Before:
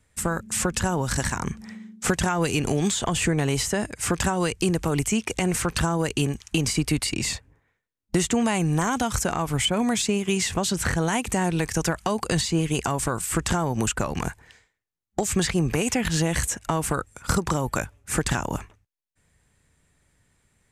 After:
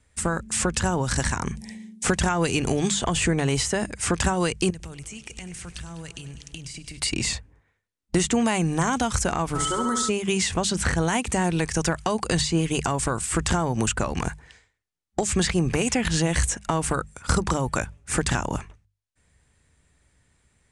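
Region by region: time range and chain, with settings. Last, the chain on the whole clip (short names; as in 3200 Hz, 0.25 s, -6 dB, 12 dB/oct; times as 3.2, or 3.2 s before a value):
1.55–2.04 Butterworth band-stop 1300 Hz, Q 1.6 + bell 11000 Hz +13.5 dB 1.1 oct
4.7–7 band shelf 550 Hz -8.5 dB 3 oct + compressor 12:1, threshold -35 dBFS + multi-head echo 0.1 s, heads first and second, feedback 59%, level -17.5 dB
9.54–10.08 fixed phaser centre 660 Hz, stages 6 + flutter echo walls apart 11.5 m, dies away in 0.69 s + whine 1300 Hz -28 dBFS
whole clip: elliptic low-pass 9900 Hz, stop band 80 dB; bell 61 Hz +6.5 dB 0.66 oct; notches 50/100/150/200 Hz; gain +1.5 dB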